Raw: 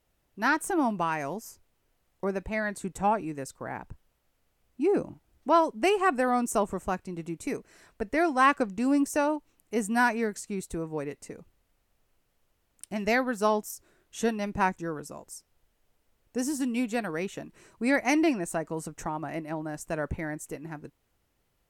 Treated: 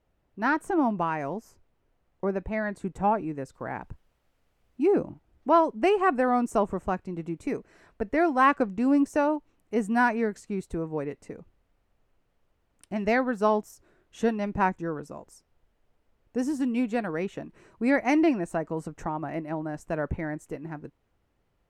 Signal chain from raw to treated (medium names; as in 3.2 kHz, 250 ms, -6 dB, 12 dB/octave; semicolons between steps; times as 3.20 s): low-pass 1.3 kHz 6 dB/octave, from 3.54 s 3.7 kHz, from 4.94 s 1.7 kHz; trim +2.5 dB